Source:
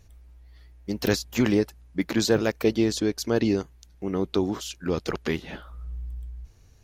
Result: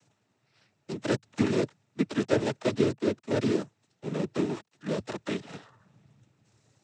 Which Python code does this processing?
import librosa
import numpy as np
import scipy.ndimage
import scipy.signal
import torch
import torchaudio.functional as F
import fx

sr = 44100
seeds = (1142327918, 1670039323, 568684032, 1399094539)

y = fx.dead_time(x, sr, dead_ms=0.23)
y = fx.noise_vocoder(y, sr, seeds[0], bands=12)
y = y * librosa.db_to_amplitude(-3.0)